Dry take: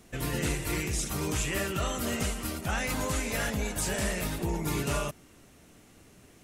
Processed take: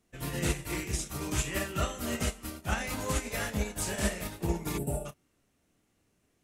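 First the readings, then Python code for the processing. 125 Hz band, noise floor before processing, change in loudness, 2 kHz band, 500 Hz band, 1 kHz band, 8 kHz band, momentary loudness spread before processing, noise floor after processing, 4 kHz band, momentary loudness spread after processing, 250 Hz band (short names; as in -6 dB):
-1.5 dB, -57 dBFS, -2.5 dB, -3.0 dB, -2.5 dB, -2.5 dB, -2.5 dB, 3 LU, -74 dBFS, -3.0 dB, 4 LU, -2.0 dB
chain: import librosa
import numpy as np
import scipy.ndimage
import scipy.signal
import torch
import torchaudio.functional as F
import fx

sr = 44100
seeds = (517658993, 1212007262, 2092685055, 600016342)

y = fx.doubler(x, sr, ms=29.0, db=-6.5)
y = fx.spec_box(y, sr, start_s=4.78, length_s=0.28, low_hz=920.0, high_hz=7400.0, gain_db=-21)
y = fx.upward_expand(y, sr, threshold_db=-39.0, expansion=2.5)
y = y * 10.0 ** (2.0 / 20.0)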